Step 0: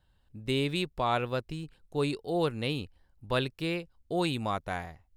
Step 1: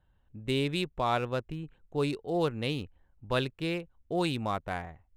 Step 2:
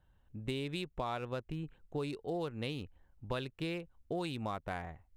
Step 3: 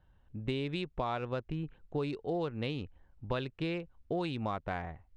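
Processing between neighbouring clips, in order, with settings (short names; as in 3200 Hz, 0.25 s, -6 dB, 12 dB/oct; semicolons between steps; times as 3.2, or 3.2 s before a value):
Wiener smoothing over 9 samples
compressor, threshold -34 dBFS, peak gain reduction 11 dB
air absorption 120 m; gain +3.5 dB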